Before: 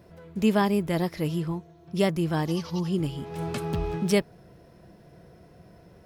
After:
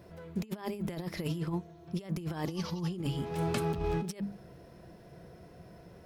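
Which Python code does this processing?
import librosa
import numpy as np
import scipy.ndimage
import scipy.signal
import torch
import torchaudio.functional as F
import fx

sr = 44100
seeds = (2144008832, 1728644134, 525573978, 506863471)

y = fx.hum_notches(x, sr, base_hz=50, count=6)
y = fx.over_compress(y, sr, threshold_db=-30.0, ratio=-0.5)
y = y * librosa.db_to_amplitude(-3.5)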